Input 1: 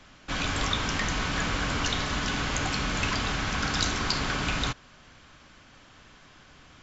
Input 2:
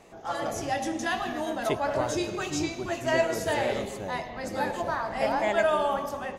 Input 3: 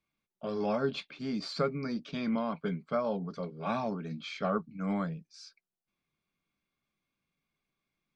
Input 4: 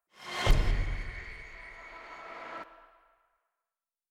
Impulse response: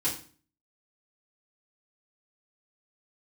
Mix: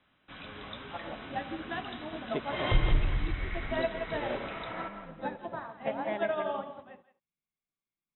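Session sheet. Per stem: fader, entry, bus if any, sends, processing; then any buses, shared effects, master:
-15.5 dB, 0.00 s, no bus, no send, no echo send, high-pass 110 Hz 6 dB/octave
+2.5 dB, 0.65 s, bus A, no send, echo send -15 dB, high-pass 170 Hz 12 dB/octave; upward expansion 2.5:1, over -37 dBFS
-13.5 dB, 0.00 s, no bus, no send, no echo send, peak limiter -29 dBFS, peak gain reduction 11.5 dB
+0.5 dB, 2.25 s, bus A, send -14.5 dB, echo send -7.5 dB, none
bus A: 0.0 dB, bass shelf 310 Hz +11.5 dB; compression 3:1, threshold -30 dBFS, peak gain reduction 18.5 dB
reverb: on, RT60 0.40 s, pre-delay 3 ms
echo: delay 169 ms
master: brick-wall FIR low-pass 4 kHz

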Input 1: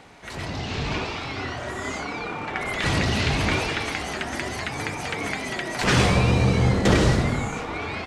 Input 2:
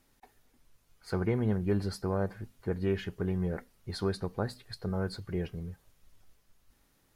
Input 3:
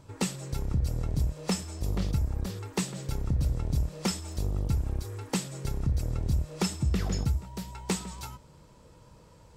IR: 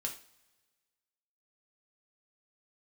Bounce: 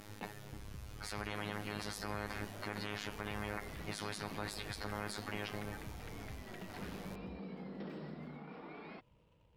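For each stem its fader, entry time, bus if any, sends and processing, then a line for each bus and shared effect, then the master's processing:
-15.5 dB, 0.95 s, bus A, no send, FFT band-pass 150–5500 Hz; tilt EQ -2.5 dB/octave
+2.5 dB, 0.00 s, no bus, no send, treble shelf 6.1 kHz -8.5 dB; robot voice 104 Hz; spectrum-flattening compressor 4:1
-14.0 dB, 0.00 s, bus A, no send, median filter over 25 samples; peaking EQ 2.8 kHz +14 dB 0.71 oct
bus A: 0.0 dB, compression 3:1, threshold -48 dBFS, peak gain reduction 15 dB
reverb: none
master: peak limiter -23.5 dBFS, peak gain reduction 11.5 dB

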